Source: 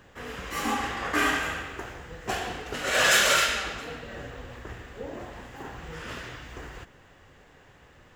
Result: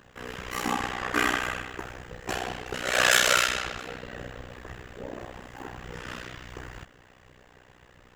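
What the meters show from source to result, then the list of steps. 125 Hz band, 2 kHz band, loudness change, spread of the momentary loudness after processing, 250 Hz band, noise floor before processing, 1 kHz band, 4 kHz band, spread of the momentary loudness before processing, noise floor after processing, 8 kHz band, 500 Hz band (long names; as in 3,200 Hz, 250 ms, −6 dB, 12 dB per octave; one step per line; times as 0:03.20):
0.0 dB, −0.5 dB, −0.5 dB, 22 LU, −0.5 dB, −55 dBFS, −0.5 dB, −0.5 dB, 22 LU, −57 dBFS, −0.5 dB, −0.5 dB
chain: amplitude modulation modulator 62 Hz, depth 90%
level +3.5 dB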